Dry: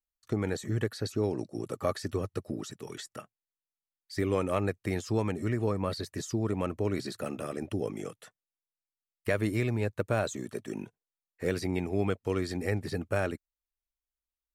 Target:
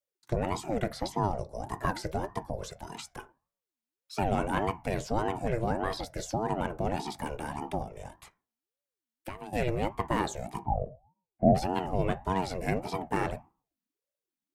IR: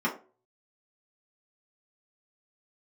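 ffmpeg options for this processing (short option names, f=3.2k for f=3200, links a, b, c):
-filter_complex "[0:a]asettb=1/sr,asplit=3[a][b][c];[a]atrim=end=7.824[d];[b]atrim=start=7.82:end=9.53,asetpts=PTS-STARTPTS,afade=t=in:d=0.004:c=qsin,afade=t=out:st=1.706:d=0.004:c=qsin,acompressor=threshold=-37dB:ratio=16[e];[c]atrim=start=9.526[f];[d][e]acrossfade=d=0.004:c1=hsin:c2=qsin[g];[g][f]acrossfade=d=0.004:c1=qsin:c2=hsin,asplit=3[h][i][j];[h]afade=t=out:st=10.62:d=0.02[k];[i]lowpass=f=420:t=q:w=4.9,afade=t=in:st=10.62:d=0.02,afade=t=out:st=11.54:d=0.02[l];[j]afade=t=in:st=11.54:d=0.02[m];[k][l][m]amix=inputs=3:normalize=0,asplit=2[n][o];[1:a]atrim=start_sample=2205,adelay=17[p];[o][p]afir=irnorm=-1:irlink=0,volume=-22dB[q];[n][q]amix=inputs=2:normalize=0,aeval=exprs='val(0)*sin(2*PI*400*n/s+400*0.45/1.7*sin(2*PI*1.7*n/s))':c=same,volume=2.5dB"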